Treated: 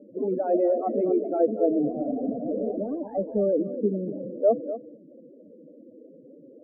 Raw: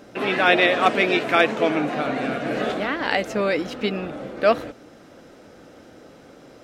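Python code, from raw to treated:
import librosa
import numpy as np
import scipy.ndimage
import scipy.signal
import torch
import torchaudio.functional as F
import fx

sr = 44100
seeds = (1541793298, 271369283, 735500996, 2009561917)

y = fx.wiener(x, sr, points=15)
y = fx.spec_topn(y, sr, count=8)
y = scipy.signal.sosfilt(scipy.signal.butter(4, 140.0, 'highpass', fs=sr, output='sos'), y)
y = y + 10.0 ** (-12.5 / 20.0) * np.pad(y, (int(240 * sr / 1000.0), 0))[:len(y)]
y = fx.quant_float(y, sr, bits=2, at=(1.86, 3.43))
y = scipy.signal.sosfilt(scipy.signal.cheby1(3, 1.0, 560.0, 'lowpass', fs=sr, output='sos'), y)
y = y * 10.0 ** (1.5 / 20.0)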